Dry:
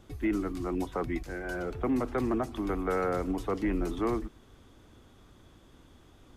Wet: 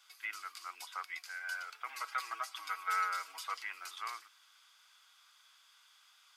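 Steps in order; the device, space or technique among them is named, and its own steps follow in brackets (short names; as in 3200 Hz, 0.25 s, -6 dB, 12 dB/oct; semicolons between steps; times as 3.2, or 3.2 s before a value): notch 1800 Hz, Q 8.3; 1.86–3.57 comb 6.2 ms, depth 90%; headphones lying on a table (HPF 1300 Hz 24 dB/oct; bell 4800 Hz +8 dB 0.22 oct); gain +2 dB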